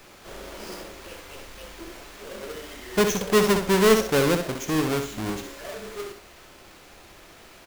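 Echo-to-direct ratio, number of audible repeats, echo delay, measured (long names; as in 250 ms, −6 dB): −6.5 dB, 2, 64 ms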